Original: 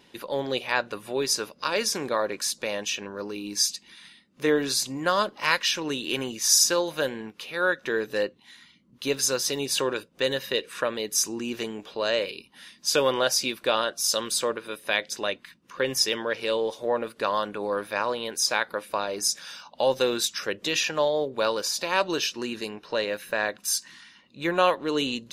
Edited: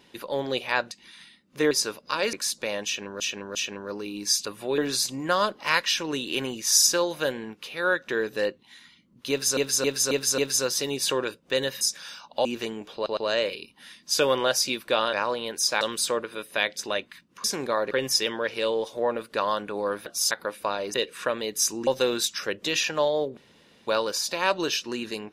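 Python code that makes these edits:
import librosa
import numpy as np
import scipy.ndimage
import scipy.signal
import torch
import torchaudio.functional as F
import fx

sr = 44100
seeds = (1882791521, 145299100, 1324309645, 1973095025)

y = fx.edit(x, sr, fx.swap(start_s=0.91, length_s=0.33, other_s=3.75, other_length_s=0.8),
    fx.move(start_s=1.86, length_s=0.47, to_s=15.77),
    fx.repeat(start_s=2.85, length_s=0.35, count=3),
    fx.repeat(start_s=9.07, length_s=0.27, count=5),
    fx.swap(start_s=10.5, length_s=0.93, other_s=19.23, other_length_s=0.64),
    fx.stutter(start_s=11.93, slice_s=0.11, count=3),
    fx.swap(start_s=13.89, length_s=0.25, other_s=17.92, other_length_s=0.68),
    fx.insert_room_tone(at_s=21.37, length_s=0.5), tone=tone)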